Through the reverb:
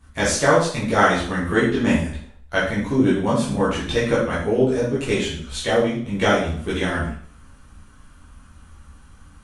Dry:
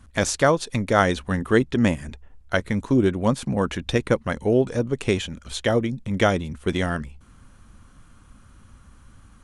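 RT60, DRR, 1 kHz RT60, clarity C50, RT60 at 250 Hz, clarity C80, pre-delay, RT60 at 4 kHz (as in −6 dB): 0.55 s, −10.0 dB, 0.55 s, 3.0 dB, 0.55 s, 7.5 dB, 6 ms, 0.50 s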